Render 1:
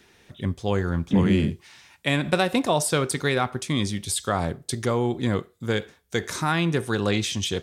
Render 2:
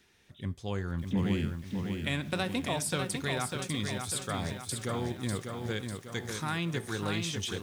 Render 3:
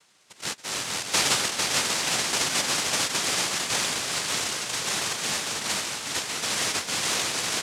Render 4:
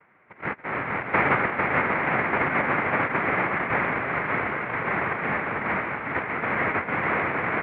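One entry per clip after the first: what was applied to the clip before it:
bell 550 Hz -5 dB 2.7 oct; lo-fi delay 0.597 s, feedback 55%, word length 8-bit, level -5 dB; gain -7.5 dB
noise vocoder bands 1; bouncing-ball echo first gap 0.45 s, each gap 0.8×, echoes 5; gain +4.5 dB
Chebyshev low-pass 2200 Hz, order 5; gain +8 dB

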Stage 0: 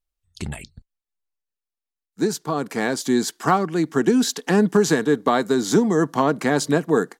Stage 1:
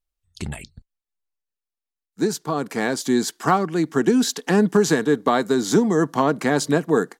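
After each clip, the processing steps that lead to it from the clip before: nothing audible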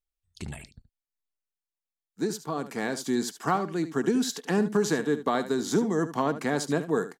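echo 74 ms -13 dB; gain -7.5 dB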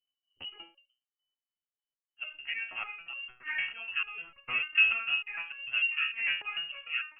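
inverted band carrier 3000 Hz; stepped resonator 6.7 Hz 68–560 Hz; gain +5.5 dB

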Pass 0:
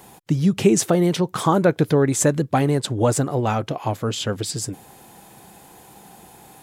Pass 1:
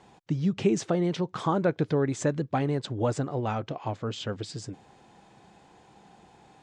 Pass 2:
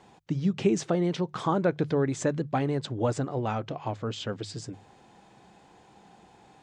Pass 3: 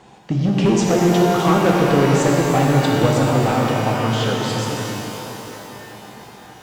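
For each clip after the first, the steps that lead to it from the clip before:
Bessel low-pass 4700 Hz, order 8; gain -8 dB
notches 50/100/150 Hz
hard clip -22 dBFS, distortion -13 dB; shimmer reverb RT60 3.9 s, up +12 st, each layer -8 dB, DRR -2.5 dB; gain +8 dB

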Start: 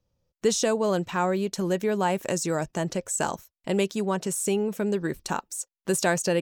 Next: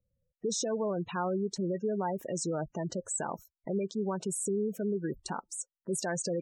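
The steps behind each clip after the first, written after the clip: limiter -17.5 dBFS, peak gain reduction 7 dB; spectral gate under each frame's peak -15 dB strong; gain -4.5 dB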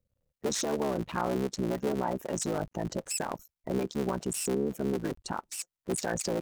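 cycle switcher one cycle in 3, muted; gain +3 dB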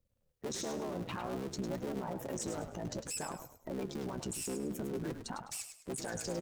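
limiter -30.5 dBFS, peak gain reduction 11.5 dB; flange 0.55 Hz, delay 2.7 ms, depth 9 ms, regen +54%; frequency-shifting echo 0.103 s, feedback 32%, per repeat -48 Hz, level -9 dB; gain +4.5 dB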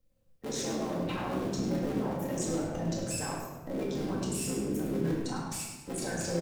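doubler 30 ms -10.5 dB; shoebox room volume 620 m³, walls mixed, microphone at 2.1 m

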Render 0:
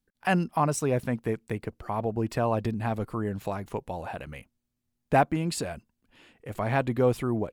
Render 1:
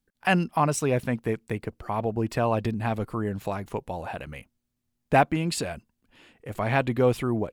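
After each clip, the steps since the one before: dynamic EQ 2800 Hz, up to +5 dB, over -44 dBFS, Q 1.1; gain +1.5 dB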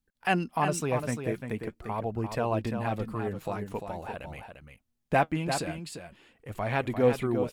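flange 0.46 Hz, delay 0.7 ms, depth 6.6 ms, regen +61%; echo 0.347 s -7.5 dB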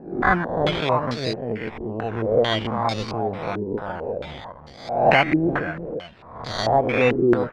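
spectral swells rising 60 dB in 0.79 s; decimation with a swept rate 13×, swing 60% 0.49 Hz; stepped low-pass 4.5 Hz 350–4600 Hz; gain +2.5 dB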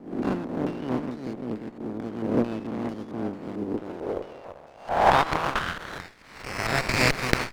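spectral contrast lowered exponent 0.27; band-pass sweep 260 Hz -> 2400 Hz, 3.61–6.33; running maximum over 9 samples; gain +5 dB

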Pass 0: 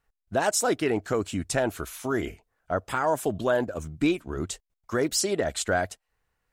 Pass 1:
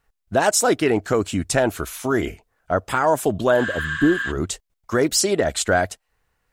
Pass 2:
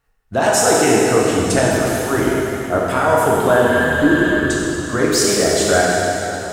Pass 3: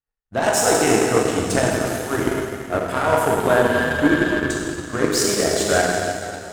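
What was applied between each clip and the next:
spectral repair 3.61–4.29, 1000–9300 Hz before; gain +6.5 dB
plate-style reverb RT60 3.6 s, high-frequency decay 0.9×, DRR -5.5 dB; gain -1 dB
power-law curve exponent 1.4

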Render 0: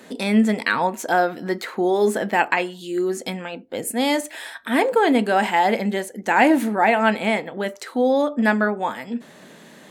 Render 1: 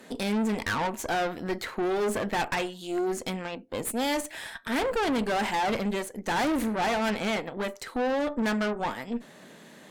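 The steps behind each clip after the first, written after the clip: spectral delete 3.84–4.07, 990–2100 Hz; tube stage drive 24 dB, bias 0.75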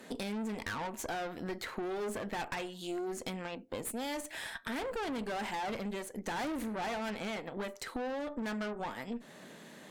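compressor, threshold -33 dBFS, peak gain reduction 9 dB; gain -2 dB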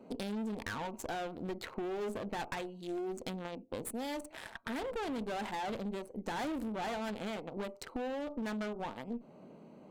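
Wiener smoothing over 25 samples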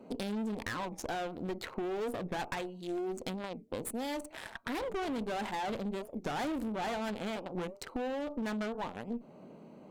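record warp 45 rpm, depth 250 cents; gain +2 dB

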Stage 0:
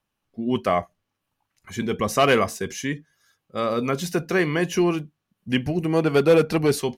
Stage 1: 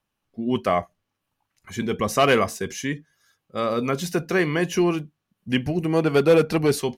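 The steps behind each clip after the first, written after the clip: nothing audible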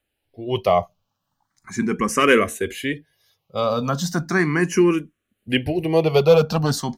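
endless phaser +0.37 Hz; gain +5.5 dB

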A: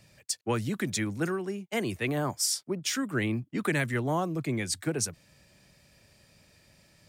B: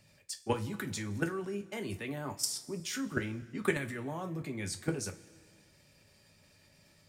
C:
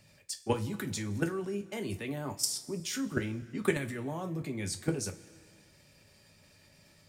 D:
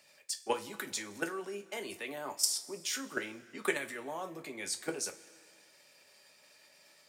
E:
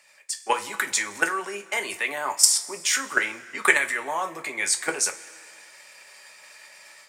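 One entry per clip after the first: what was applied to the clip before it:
level quantiser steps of 13 dB; two-slope reverb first 0.22 s, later 1.9 s, from -20 dB, DRR 4 dB
dynamic EQ 1500 Hz, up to -4 dB, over -52 dBFS, Q 0.86; gain +2.5 dB
HPF 510 Hz 12 dB/oct; gain +1.5 dB
AGC gain up to 8 dB; graphic EQ 125/250/1000/2000/8000 Hz -4/-4/+8/+10/+9 dB; gain -2 dB

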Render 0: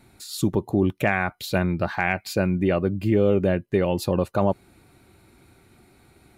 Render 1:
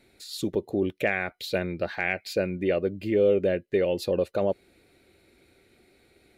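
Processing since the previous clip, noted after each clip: graphic EQ 125/500/1000/2000/4000 Hz -6/+11/-9/+7/+6 dB; gain -8 dB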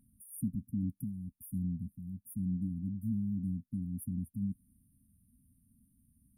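brick-wall FIR band-stop 270–8800 Hz

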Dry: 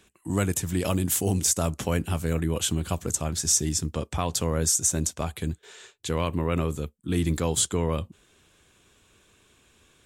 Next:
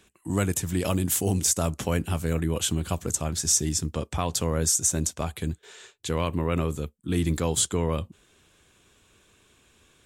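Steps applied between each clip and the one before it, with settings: nothing audible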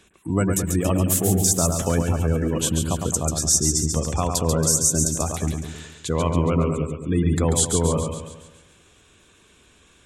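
spectral gate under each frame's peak -25 dB strong; split-band echo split 2300 Hz, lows 0.106 s, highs 0.139 s, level -5 dB; dynamic EQ 2900 Hz, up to -5 dB, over -41 dBFS, Q 1; gain +4 dB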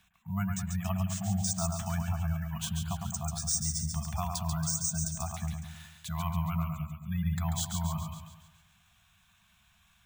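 careless resampling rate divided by 3×, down filtered, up hold; FFT band-reject 220–640 Hz; de-hum 397.7 Hz, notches 12; gain -9 dB

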